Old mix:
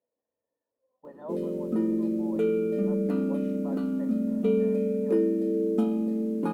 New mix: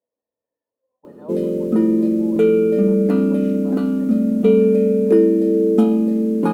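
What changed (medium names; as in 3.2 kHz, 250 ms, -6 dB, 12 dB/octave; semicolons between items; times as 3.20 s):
background +12.0 dB; reverb: off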